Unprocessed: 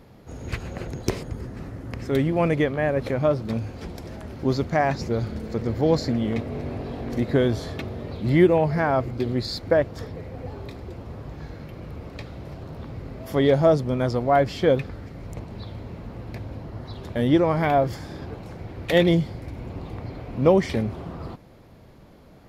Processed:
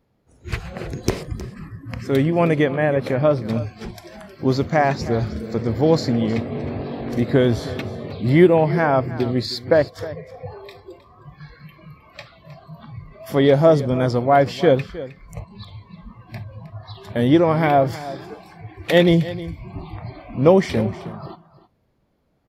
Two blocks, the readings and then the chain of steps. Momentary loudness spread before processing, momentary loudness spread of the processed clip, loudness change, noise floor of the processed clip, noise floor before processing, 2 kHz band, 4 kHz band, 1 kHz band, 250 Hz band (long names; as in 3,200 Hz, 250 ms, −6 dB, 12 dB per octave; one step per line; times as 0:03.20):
18 LU, 21 LU, +4.0 dB, −55 dBFS, −49 dBFS, +4.0 dB, +4.0 dB, +4.0 dB, +4.0 dB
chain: noise reduction from a noise print of the clip's start 21 dB
single-tap delay 313 ms −16 dB
level +4 dB